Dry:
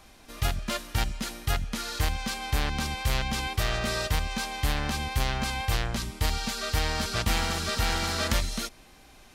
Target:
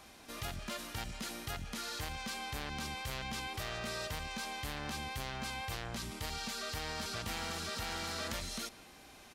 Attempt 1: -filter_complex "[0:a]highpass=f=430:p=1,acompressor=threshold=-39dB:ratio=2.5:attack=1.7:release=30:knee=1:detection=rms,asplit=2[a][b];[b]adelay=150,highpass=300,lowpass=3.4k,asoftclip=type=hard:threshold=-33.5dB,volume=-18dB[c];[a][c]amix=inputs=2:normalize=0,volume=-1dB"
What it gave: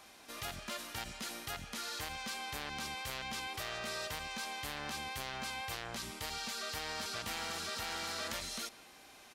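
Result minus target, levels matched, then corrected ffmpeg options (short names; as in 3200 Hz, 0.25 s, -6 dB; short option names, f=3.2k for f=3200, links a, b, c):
125 Hz band -7.0 dB
-filter_complex "[0:a]highpass=f=120:p=1,acompressor=threshold=-39dB:ratio=2.5:attack=1.7:release=30:knee=1:detection=rms,asplit=2[a][b];[b]adelay=150,highpass=300,lowpass=3.4k,asoftclip=type=hard:threshold=-33.5dB,volume=-18dB[c];[a][c]amix=inputs=2:normalize=0,volume=-1dB"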